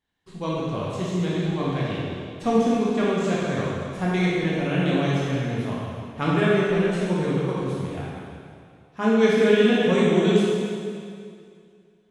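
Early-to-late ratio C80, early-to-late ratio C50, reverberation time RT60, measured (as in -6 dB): -1.0 dB, -3.0 dB, 2.3 s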